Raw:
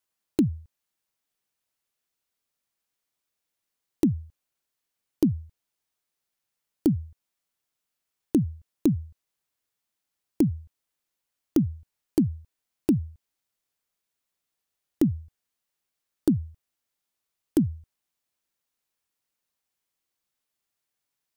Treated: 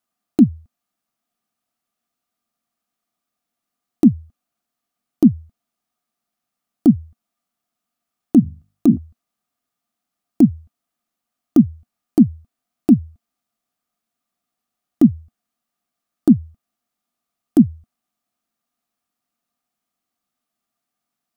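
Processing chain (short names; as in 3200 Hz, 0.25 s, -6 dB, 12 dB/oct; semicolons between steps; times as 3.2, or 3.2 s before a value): 8.4–8.97 notches 50/100/150/200/250/300/350/400 Hz; small resonant body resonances 230/700/1200 Hz, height 15 dB, ringing for 40 ms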